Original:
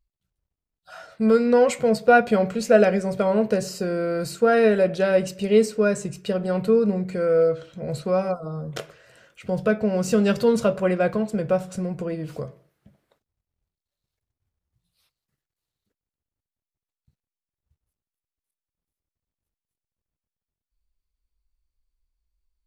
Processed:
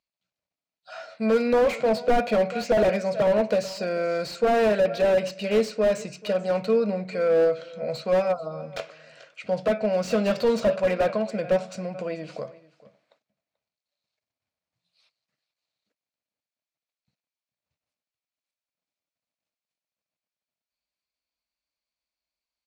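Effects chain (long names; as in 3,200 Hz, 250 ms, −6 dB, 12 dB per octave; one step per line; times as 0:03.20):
loudspeaker in its box 260–7,200 Hz, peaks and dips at 380 Hz −10 dB, 630 Hz +7 dB, 2,400 Hz +7 dB, 4,300 Hz +6 dB
single-tap delay 436 ms −21 dB
slew-rate limiting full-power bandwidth 81 Hz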